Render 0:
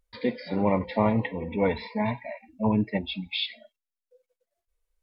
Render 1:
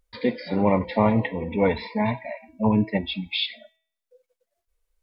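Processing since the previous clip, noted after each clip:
hum removal 323.6 Hz, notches 11
level +3.5 dB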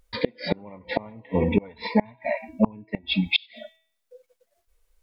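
gate with flip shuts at −15 dBFS, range −31 dB
level +8 dB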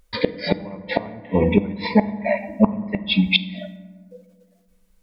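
convolution reverb RT60 1.7 s, pre-delay 5 ms, DRR 13 dB
level +4.5 dB

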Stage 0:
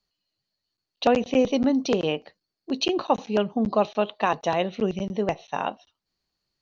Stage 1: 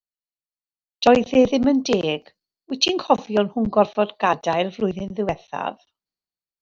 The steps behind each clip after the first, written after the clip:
multiband upward and downward expander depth 70%
level +3.5 dB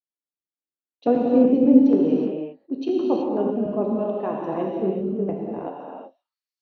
band-pass filter sweep 300 Hz → 5,300 Hz, 0:05.60–0:06.40
reverb whose tail is shaped and stops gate 400 ms flat, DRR −2.5 dB
level +1.5 dB

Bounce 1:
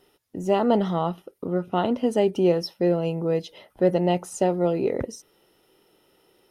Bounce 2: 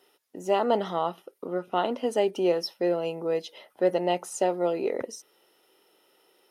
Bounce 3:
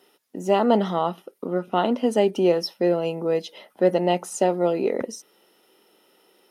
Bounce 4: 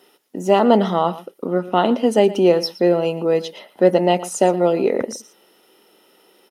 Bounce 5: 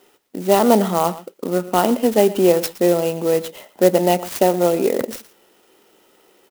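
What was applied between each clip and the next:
Bessel high-pass filter 450 Hz, order 2
parametric band 210 Hz +8.5 dB 0.73 octaves; level +3.5 dB
single-tap delay 117 ms −17 dB; level +5 dB
converter with an unsteady clock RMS 0.046 ms

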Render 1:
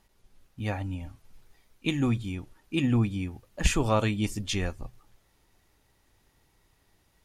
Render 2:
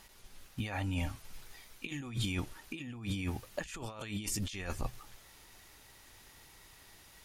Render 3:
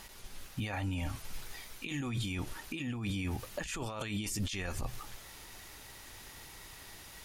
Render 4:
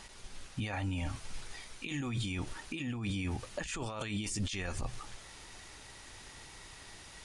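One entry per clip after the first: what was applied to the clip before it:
tilt shelving filter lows −5 dB, about 860 Hz; compressor whose output falls as the input rises −40 dBFS, ratio −1; level +1 dB
brickwall limiter −34.5 dBFS, peak gain reduction 11 dB; level +7 dB
downsampling to 22,050 Hz

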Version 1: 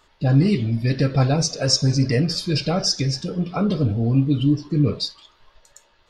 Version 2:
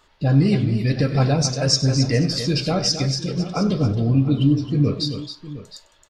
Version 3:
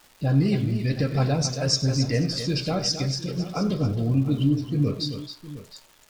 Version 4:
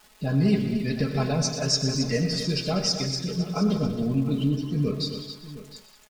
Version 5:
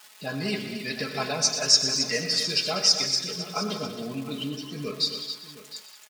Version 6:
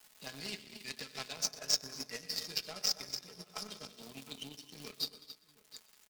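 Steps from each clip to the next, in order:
multi-tap delay 97/269/712 ms −16.5/−9.5/−15.5 dB
surface crackle 560 per second −37 dBFS; level −4.5 dB
comb filter 4.7 ms, depth 68%; multi-tap delay 120/190 ms −11.5/−12.5 dB; level −2 dB
high-pass filter 1,400 Hz 6 dB per octave; level +6.5 dB
power curve on the samples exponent 2; multiband upward and downward compressor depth 70%

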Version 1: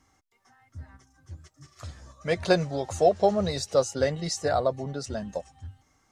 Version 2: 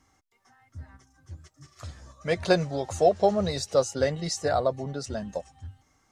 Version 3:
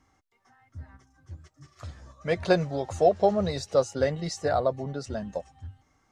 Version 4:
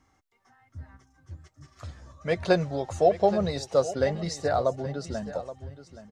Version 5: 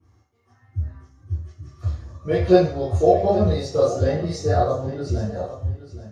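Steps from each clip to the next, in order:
no processing that can be heard
high-shelf EQ 4,900 Hz −9 dB
repeating echo 824 ms, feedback 18%, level −14 dB
convolution reverb RT60 0.45 s, pre-delay 3 ms, DRR −11 dB; level −14.5 dB

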